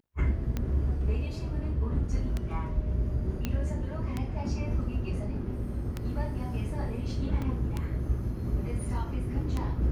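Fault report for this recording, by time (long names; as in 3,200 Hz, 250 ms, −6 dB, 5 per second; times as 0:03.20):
scratch tick 33 1/3 rpm −18 dBFS
0:03.45: click −16 dBFS
0:07.42: drop-out 2.8 ms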